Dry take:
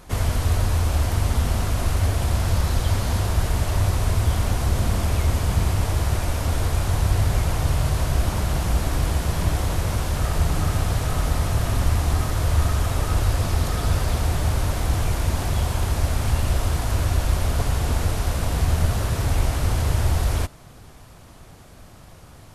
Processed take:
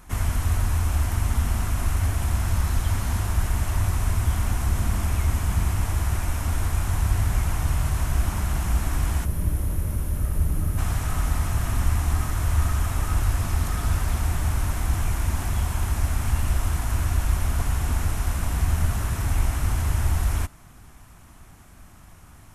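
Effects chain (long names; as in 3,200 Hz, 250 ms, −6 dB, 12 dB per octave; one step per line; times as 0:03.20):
notch filter 4,700 Hz, Q 22
gain on a spectral selection 0:09.25–0:10.78, 640–9,100 Hz −10 dB
octave-band graphic EQ 125/500/4,000 Hz −5/−12/−8 dB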